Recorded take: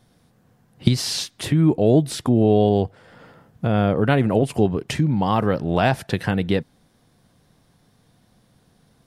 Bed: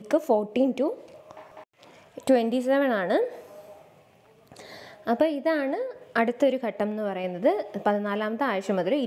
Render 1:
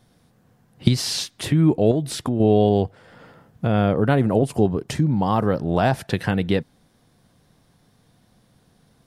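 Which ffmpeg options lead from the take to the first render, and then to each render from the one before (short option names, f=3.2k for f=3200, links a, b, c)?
-filter_complex "[0:a]asettb=1/sr,asplit=3[a][b][c];[a]atrim=end=1.914[d];[b]atrim=start=1.91:end=2.4,asetpts=PTS-STARTPTS,afade=t=in:d=0.004:c=qsin,afade=t=out:st=0.486:d=0.004:c=qsin,acompressor=threshold=-19dB:ratio=3:attack=3.2:release=140:knee=1:detection=peak[e];[c]atrim=start=2.396[f];[d][e]acrossfade=d=0.004:c1=hsin:c2=qsin[g];[g][f]acrossfade=d=0.004:c1=qsin:c2=hsin,asettb=1/sr,asplit=3[h][i][j];[h]atrim=end=3.964[k];[i]atrim=start=3.96:end=5.94,asetpts=PTS-STARTPTS,afade=t=in:d=0.004:c=qsin,afade=t=out:st=1.976:d=0.004:c=qsin,equalizer=f=2.5k:w=1.3:g=-6.5[l];[j]atrim=start=5.936[m];[k][l]acrossfade=d=0.004:c1=hsin:c2=qsin[n];[n][m]acrossfade=d=0.004:c1=qsin:c2=hsin"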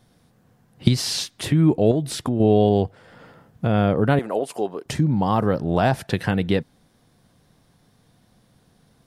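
-filter_complex "[0:a]asettb=1/sr,asplit=3[a][b][c];[a]atrim=end=4.194[d];[b]atrim=start=4.19:end=4.86,asetpts=PTS-STARTPTS,afade=t=in:d=0.004:c=qsin,afade=t=out:st=0.666:d=0.004:c=qsin,highpass=480[e];[c]atrim=start=4.856[f];[d][e]acrossfade=d=0.004:c1=hsin:c2=qsin[g];[g][f]acrossfade=d=0.004:c1=qsin:c2=hsin"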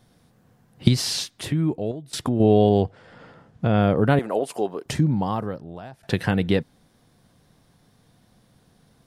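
-filter_complex "[0:a]asettb=1/sr,asplit=3[a][b][c];[a]atrim=end=2.834[d];[b]atrim=start=2.83:end=3.82,asetpts=PTS-STARTPTS,afade=t=in:d=0.004:c=qsin,afade=t=out:st=0.986:d=0.004:c=qsin,lowpass=7.3k[e];[c]atrim=start=3.816[f];[d][e]acrossfade=d=0.004:c1=hsin:c2=qsin[g];[g][f]acrossfade=d=0.004:c1=qsin:c2=hsin,asplit=3[h][i][j];[h]atrim=end=2.13,asetpts=PTS-STARTPTS,afade=t=out:st=1.02:d=1.11:silence=0.1[k];[i]atrim=start=2.13:end=6.03,asetpts=PTS-STARTPTS,afade=t=in:d=0.004:c=hsin:silence=0.1,afade=t=out:st=2.91:d=0.99:c=qua:silence=0.0630957[l];[j]atrim=start=6.03,asetpts=PTS-STARTPTS,afade=t=in:d=0.004:c=hsin:silence=0.0630957[m];[k][l][m]concat=n=3:v=0:a=1"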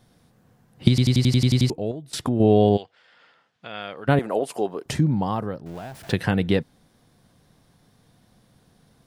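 -filter_complex "[0:a]asplit=3[a][b][c];[a]afade=t=out:st=2.76:d=0.02[d];[b]bandpass=f=3.3k:t=q:w=0.96,afade=t=in:st=2.76:d=0.02,afade=t=out:st=4.07:d=0.02[e];[c]afade=t=in:st=4.07:d=0.02[f];[d][e][f]amix=inputs=3:normalize=0,asettb=1/sr,asplit=3[g][h][i];[g]atrim=end=5.664[j];[h]atrim=start=5.66:end=6.12,asetpts=PTS-STARTPTS,afade=t=in:d=0.004:c=qsin,afade=t=out:st=0.456:d=0.004:c=qsin,aeval=exprs='val(0)+0.5*0.01*sgn(val(0))':c=same[k];[i]atrim=start=6.116[l];[j][k]acrossfade=d=0.004:c1=hsin:c2=qsin[m];[m][l]acrossfade=d=0.004:c1=qsin:c2=hsin,asplit=10[n][o][p][q][r][s][t][u][v][w];[n]atrim=end=0.982[x];[o]atrim=start=0.888:end=0.982[y];[p]atrim=start=0.888:end=0.982[z];[q]atrim=start=0.888:end=0.982[aa];[r]atrim=start=0.888:end=0.982[ab];[s]atrim=start=0.888:end=0.982[ac];[t]atrim=start=0.888:end=0.982[ad];[u]atrim=start=0.888:end=0.982[ae];[v]atrim=start=0.888:end=0.982[af];[w]atrim=start=1.698[ag];[x][y]acrossfade=d=0.004:c1=hsin:c2=hsin[ah];[ah][z]acrossfade=d=0.004:c1=hsin:c2=hsin[ai];[ai][aa]acrossfade=d=0.004:c1=hsin:c2=hsin[aj];[aj][ab]acrossfade=d=0.004:c1=hsin:c2=hsin[ak];[ak][ac]acrossfade=d=0.004:c1=hsin:c2=hsin[al];[al][ad]acrossfade=d=0.004:c1=hsin:c2=hsin[am];[am][ae]acrossfade=d=0.004:c1=hsin:c2=hsin[an];[an][af]acrossfade=d=0.004:c1=hsin:c2=hsin[ao];[ao][ag]acrossfade=d=0.004:c1=hsin:c2=hsin"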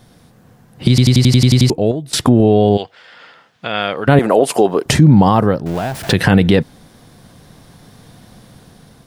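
-af "dynaudnorm=f=500:g=5:m=6.5dB,alimiter=level_in=11.5dB:limit=-1dB:release=50:level=0:latency=1"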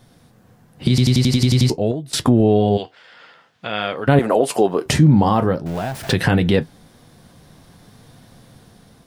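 -af "flanger=delay=7.3:depth=5.9:regen=-61:speed=0.48:shape=sinusoidal"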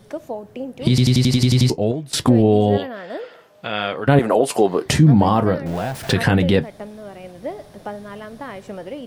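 -filter_complex "[1:a]volume=-7dB[a];[0:a][a]amix=inputs=2:normalize=0"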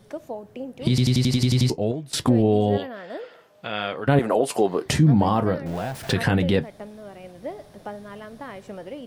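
-af "volume=-4.5dB"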